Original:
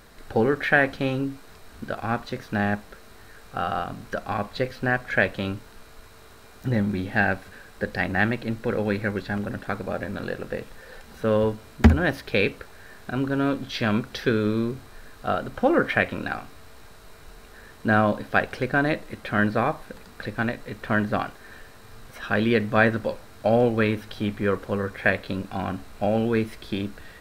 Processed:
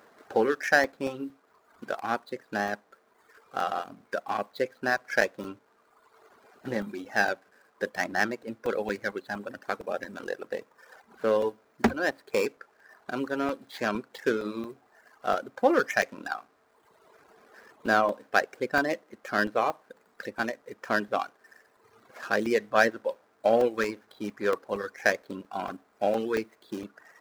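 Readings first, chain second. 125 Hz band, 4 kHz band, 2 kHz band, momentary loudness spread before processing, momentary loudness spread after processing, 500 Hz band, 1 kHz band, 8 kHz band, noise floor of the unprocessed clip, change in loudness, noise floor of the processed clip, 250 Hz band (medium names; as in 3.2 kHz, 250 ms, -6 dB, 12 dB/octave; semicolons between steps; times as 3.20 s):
-18.5 dB, -4.0 dB, -3.5 dB, 14 LU, 14 LU, -2.5 dB, -1.5 dB, +4.0 dB, -48 dBFS, -4.0 dB, -66 dBFS, -8.5 dB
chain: median filter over 15 samples; high-pass 340 Hz 12 dB/octave; reverb removal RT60 1.4 s; crackling interface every 0.23 s, samples 128, zero, from 0.84 s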